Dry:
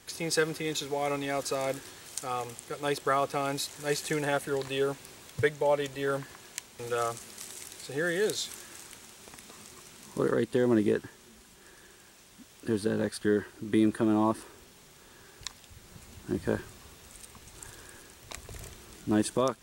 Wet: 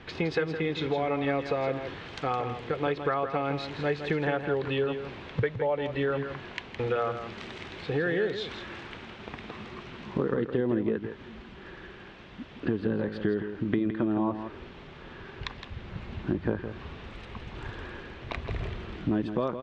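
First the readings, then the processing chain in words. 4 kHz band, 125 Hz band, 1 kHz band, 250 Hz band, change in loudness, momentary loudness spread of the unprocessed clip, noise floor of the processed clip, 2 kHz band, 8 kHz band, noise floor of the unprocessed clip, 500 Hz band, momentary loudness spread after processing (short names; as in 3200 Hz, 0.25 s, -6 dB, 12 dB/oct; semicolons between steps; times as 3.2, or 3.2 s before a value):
-2.5 dB, +4.5 dB, +0.5 dB, +0.5 dB, -0.5 dB, 21 LU, -47 dBFS, +1.0 dB, under -20 dB, -56 dBFS, +0.5 dB, 15 LU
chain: LPF 3200 Hz 24 dB/oct; low shelf 390 Hz +4 dB; compressor 5:1, threshold -35 dBFS, peak gain reduction 16 dB; on a send: echo 0.164 s -9 dB; on the sum: gain +9 dB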